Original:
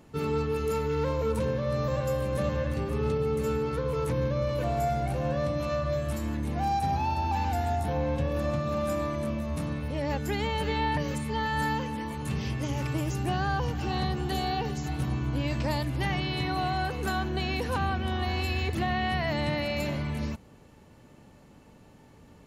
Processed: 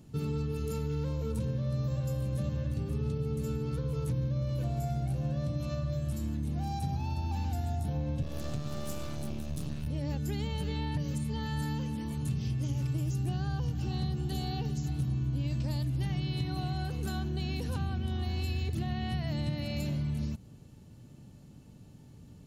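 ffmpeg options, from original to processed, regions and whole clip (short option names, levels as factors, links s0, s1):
-filter_complex "[0:a]asettb=1/sr,asplit=3[s0][s1][s2];[s0]atrim=end=8.224[s3];[s1]atrim=start=8.22:end=9.87,asetpts=PTS-STARTPTS,afade=t=in:d=0.004:c=qsin,afade=t=out:st=1.646:d=0.004:c=qsin,highshelf=f=2200:g=7.5,aeval=exprs='max(val(0),0)':c=same[s4];[s2]atrim=start=9.866[s5];[s3][s4]acrossfade=d=0.004:c1=hsin:c2=qsin[s6];[s6][s5]acrossfade=d=0.004:c1=qsin:c2=hsin,equalizer=f=125:t=o:w=1:g=7,equalizer=f=500:t=o:w=1:g=-6,equalizer=f=1000:t=o:w=1:g=-9,equalizer=f=2000:t=o:w=1:g=-9,acompressor=threshold=0.0282:ratio=2.5"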